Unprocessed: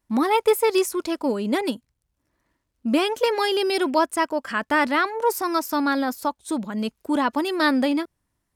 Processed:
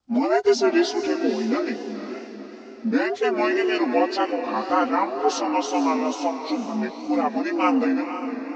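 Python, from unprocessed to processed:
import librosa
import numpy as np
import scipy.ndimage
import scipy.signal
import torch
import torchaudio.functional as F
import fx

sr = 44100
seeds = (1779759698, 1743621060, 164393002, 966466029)

y = fx.partial_stretch(x, sr, pct=80)
y = fx.echo_diffused(y, sr, ms=503, feedback_pct=45, wet_db=-9)
y = fx.wow_flutter(y, sr, seeds[0], rate_hz=2.1, depth_cents=76.0)
y = y * librosa.db_to_amplitude(1.0)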